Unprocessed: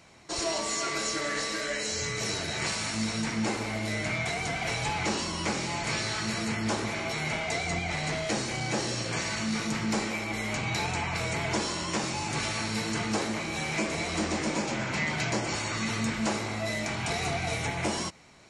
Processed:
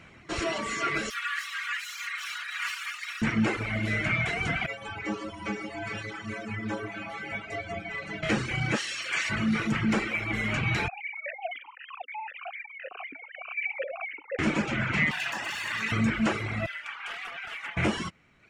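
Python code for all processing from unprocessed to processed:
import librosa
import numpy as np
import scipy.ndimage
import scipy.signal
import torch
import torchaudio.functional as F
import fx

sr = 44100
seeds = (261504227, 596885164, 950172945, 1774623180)

y = fx.chain(x, sr, fx.lower_of_two(delay_ms=4.2),
    fx.steep_highpass(hz=1100.0, slope=36),
    fx.clip_hard(threshold_db=-24.5), at=(1.1, 3.22))
y = fx.chain(y, sr, fx.peak_eq(hz=550.0, db=6.0, octaves=2.4),
    fx.stiff_resonator(f0_hz=100.0, decay_s=0.36, stiffness=0.008),
    fx.echo_alternate(ms=143, hz=1800.0, feedback_pct=61, wet_db=-8.5), at=(4.66, 8.23))
y = fx.highpass(y, sr, hz=1400.0, slope=6, at=(8.75, 9.29), fade=0.02)
y = fx.high_shelf(y, sr, hz=2300.0, db=7.0, at=(8.75, 9.29), fade=0.02)
y = fx.dmg_crackle(y, sr, seeds[0], per_s=270.0, level_db=-38.0, at=(8.75, 9.29), fade=0.02)
y = fx.chain(y, sr, fx.sine_speech(),
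    fx.vowel_held(hz=7.9), at=(10.88, 14.39))
y = fx.chain(y, sr, fx.lower_of_two(delay_ms=1.1),
    fx.highpass(hz=1100.0, slope=6),
    fx.env_flatten(amount_pct=70), at=(15.11, 15.92))
y = fx.chain(y, sr, fx.ladder_highpass(hz=820.0, resonance_pct=30),
    fx.high_shelf(hz=4600.0, db=-4.0),
    fx.doppler_dist(depth_ms=0.21), at=(16.66, 17.77))
y = fx.band_shelf(y, sr, hz=2000.0, db=12.5, octaves=1.7)
y = fx.dereverb_blind(y, sr, rt60_s=1.1)
y = fx.tilt_shelf(y, sr, db=7.5, hz=690.0)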